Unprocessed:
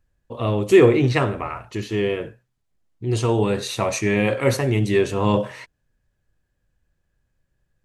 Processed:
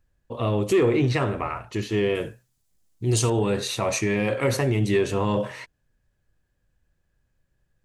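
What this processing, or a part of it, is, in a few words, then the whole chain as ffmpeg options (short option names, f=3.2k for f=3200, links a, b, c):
soft clipper into limiter: -filter_complex "[0:a]asettb=1/sr,asplit=3[a][b][c];[a]atrim=end=2.154[d];[b]atrim=start=2.15:end=3.3,asetpts=PTS-STARTPTS,afade=t=in:d=0.004:c=qsin,afade=t=out:st=1.146:d=0.004:c=qsin,bass=f=250:g=2,treble=f=4k:g=14[e];[c]atrim=start=3.296[f];[d][e]acrossfade=d=0.004:c1=hsin:c2=qsin[g];[g][f]acrossfade=d=0.004:c1=qsin:c2=hsin,asoftclip=type=tanh:threshold=-6dB,alimiter=limit=-13.5dB:level=0:latency=1:release=107"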